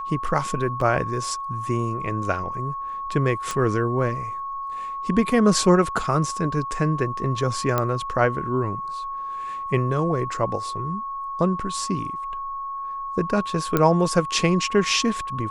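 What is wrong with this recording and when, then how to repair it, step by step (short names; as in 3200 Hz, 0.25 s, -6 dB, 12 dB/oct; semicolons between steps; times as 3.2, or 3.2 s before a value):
tone 1100 Hz -28 dBFS
0.81 gap 3.6 ms
3.51 pop
7.78 pop -8 dBFS
13.77 pop -7 dBFS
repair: de-click; notch 1100 Hz, Q 30; interpolate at 0.81, 3.6 ms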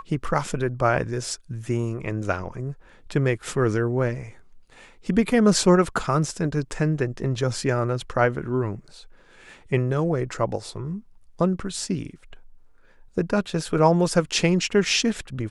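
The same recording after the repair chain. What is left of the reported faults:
3.51 pop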